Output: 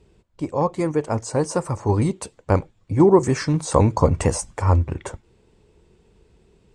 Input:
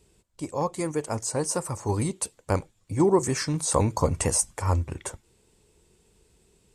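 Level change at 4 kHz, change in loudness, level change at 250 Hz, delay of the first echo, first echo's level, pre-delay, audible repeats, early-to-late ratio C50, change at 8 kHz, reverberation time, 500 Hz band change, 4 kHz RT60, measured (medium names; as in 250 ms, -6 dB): -0.5 dB, +5.5 dB, +7.0 dB, no echo, no echo, no reverb, no echo, no reverb, -4.5 dB, no reverb, +6.5 dB, no reverb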